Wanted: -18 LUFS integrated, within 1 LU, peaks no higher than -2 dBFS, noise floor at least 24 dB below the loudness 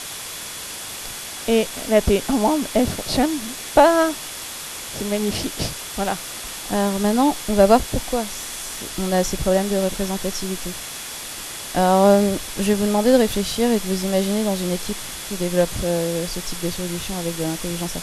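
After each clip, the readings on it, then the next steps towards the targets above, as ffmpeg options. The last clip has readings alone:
steady tone 3400 Hz; tone level -43 dBFS; noise floor -33 dBFS; noise floor target -46 dBFS; loudness -21.5 LUFS; peak -1.5 dBFS; loudness target -18.0 LUFS
-> -af "bandreject=f=3.4k:w=30"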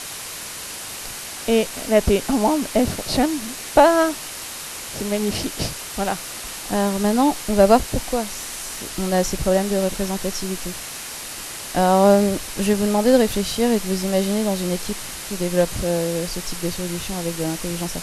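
steady tone none; noise floor -33 dBFS; noise floor target -46 dBFS
-> -af "afftdn=nr=13:nf=-33"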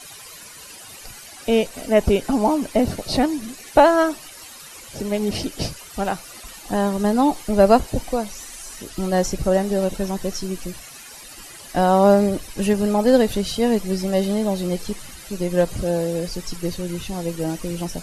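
noise floor -41 dBFS; noise floor target -45 dBFS
-> -af "afftdn=nr=6:nf=-41"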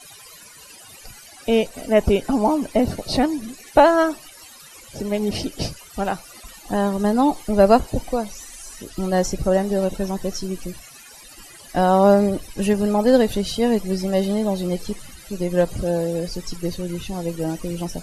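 noise floor -44 dBFS; noise floor target -45 dBFS
-> -af "afftdn=nr=6:nf=-44"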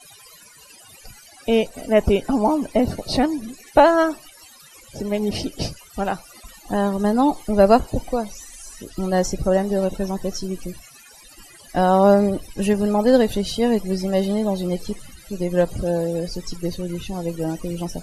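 noise floor -47 dBFS; loudness -21.0 LUFS; peak -2.0 dBFS; loudness target -18.0 LUFS
-> -af "volume=3dB,alimiter=limit=-2dB:level=0:latency=1"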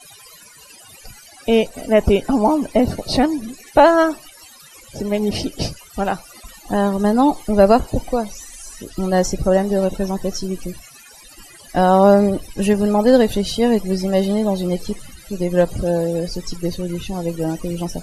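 loudness -18.5 LUFS; peak -2.0 dBFS; noise floor -44 dBFS

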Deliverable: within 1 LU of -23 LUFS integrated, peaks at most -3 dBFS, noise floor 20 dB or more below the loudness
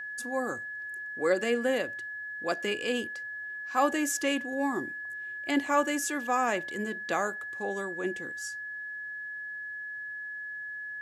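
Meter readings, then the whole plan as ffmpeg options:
steady tone 1700 Hz; tone level -36 dBFS; loudness -31.5 LUFS; peak -12.5 dBFS; loudness target -23.0 LUFS
-> -af "bandreject=f=1.7k:w=30"
-af "volume=8.5dB"

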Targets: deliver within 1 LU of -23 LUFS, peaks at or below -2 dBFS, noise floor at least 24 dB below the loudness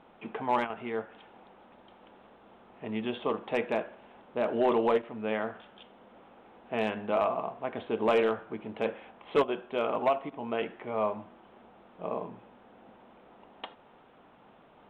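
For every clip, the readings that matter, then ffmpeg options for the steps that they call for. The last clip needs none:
loudness -31.5 LUFS; peak -18.0 dBFS; loudness target -23.0 LUFS
-> -af "volume=8.5dB"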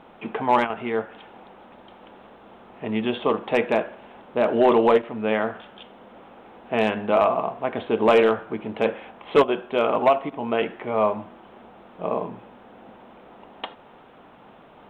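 loudness -23.0 LUFS; peak -9.5 dBFS; noise floor -49 dBFS

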